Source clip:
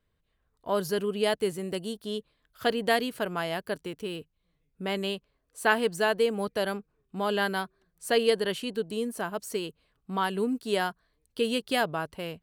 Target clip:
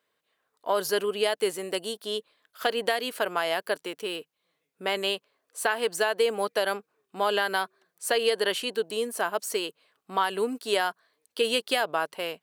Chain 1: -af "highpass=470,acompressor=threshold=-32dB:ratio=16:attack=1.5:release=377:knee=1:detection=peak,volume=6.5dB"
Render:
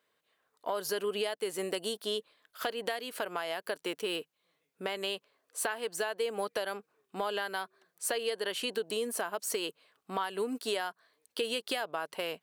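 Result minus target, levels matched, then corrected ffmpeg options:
downward compressor: peak gain reduction +9 dB
-af "highpass=470,acompressor=threshold=-22.5dB:ratio=16:attack=1.5:release=377:knee=1:detection=peak,volume=6.5dB"

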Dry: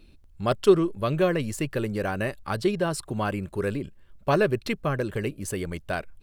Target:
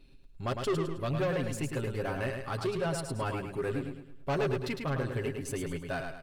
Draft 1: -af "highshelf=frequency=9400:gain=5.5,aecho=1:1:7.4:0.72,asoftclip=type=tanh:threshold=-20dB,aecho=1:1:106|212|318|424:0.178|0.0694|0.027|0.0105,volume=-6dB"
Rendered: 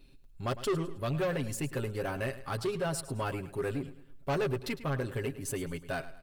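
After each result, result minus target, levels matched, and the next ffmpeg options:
echo-to-direct −9.5 dB; 8,000 Hz band +3.5 dB
-af "highshelf=frequency=9400:gain=5.5,aecho=1:1:7.4:0.72,asoftclip=type=tanh:threshold=-20dB,aecho=1:1:106|212|318|424|530:0.531|0.207|0.0807|0.0315|0.0123,volume=-6dB"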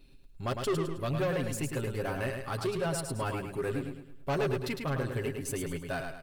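8,000 Hz band +3.5 dB
-af "highshelf=frequency=9400:gain=-4.5,aecho=1:1:7.4:0.72,asoftclip=type=tanh:threshold=-20dB,aecho=1:1:106|212|318|424|530:0.531|0.207|0.0807|0.0315|0.0123,volume=-6dB"

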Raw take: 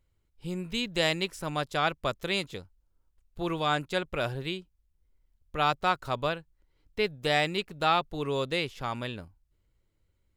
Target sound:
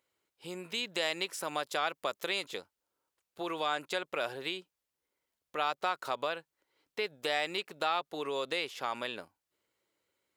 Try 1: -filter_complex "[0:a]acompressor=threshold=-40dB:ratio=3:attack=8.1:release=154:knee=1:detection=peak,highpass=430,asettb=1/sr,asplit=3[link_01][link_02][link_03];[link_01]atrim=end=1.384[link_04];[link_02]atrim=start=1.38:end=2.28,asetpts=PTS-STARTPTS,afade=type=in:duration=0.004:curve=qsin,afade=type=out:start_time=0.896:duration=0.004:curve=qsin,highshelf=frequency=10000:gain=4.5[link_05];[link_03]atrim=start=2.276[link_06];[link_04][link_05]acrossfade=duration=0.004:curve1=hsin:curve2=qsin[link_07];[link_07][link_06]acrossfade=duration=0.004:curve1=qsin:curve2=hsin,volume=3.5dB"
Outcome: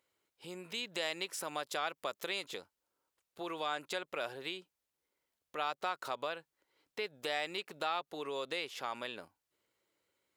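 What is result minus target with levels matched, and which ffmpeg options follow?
downward compressor: peak gain reduction +4.5 dB
-filter_complex "[0:a]acompressor=threshold=-33.5dB:ratio=3:attack=8.1:release=154:knee=1:detection=peak,highpass=430,asettb=1/sr,asplit=3[link_01][link_02][link_03];[link_01]atrim=end=1.384[link_04];[link_02]atrim=start=1.38:end=2.28,asetpts=PTS-STARTPTS,afade=type=in:duration=0.004:curve=qsin,afade=type=out:start_time=0.896:duration=0.004:curve=qsin,highshelf=frequency=10000:gain=4.5[link_05];[link_03]atrim=start=2.276[link_06];[link_04][link_05]acrossfade=duration=0.004:curve1=hsin:curve2=qsin[link_07];[link_07][link_06]acrossfade=duration=0.004:curve1=qsin:curve2=hsin,volume=3.5dB"

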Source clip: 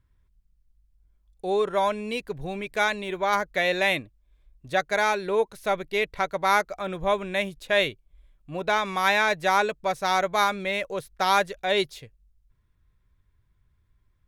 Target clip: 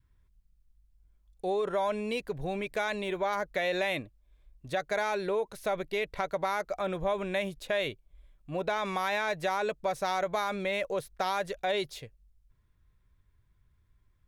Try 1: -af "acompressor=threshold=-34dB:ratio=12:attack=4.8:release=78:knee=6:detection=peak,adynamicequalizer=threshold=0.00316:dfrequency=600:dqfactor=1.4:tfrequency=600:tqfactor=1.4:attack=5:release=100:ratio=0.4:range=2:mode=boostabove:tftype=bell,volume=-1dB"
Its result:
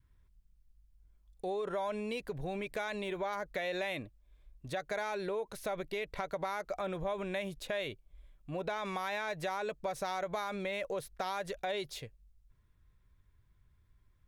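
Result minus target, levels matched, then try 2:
downward compressor: peak gain reduction +6.5 dB
-af "acompressor=threshold=-27dB:ratio=12:attack=4.8:release=78:knee=6:detection=peak,adynamicequalizer=threshold=0.00316:dfrequency=600:dqfactor=1.4:tfrequency=600:tqfactor=1.4:attack=5:release=100:ratio=0.4:range=2:mode=boostabove:tftype=bell,volume=-1dB"

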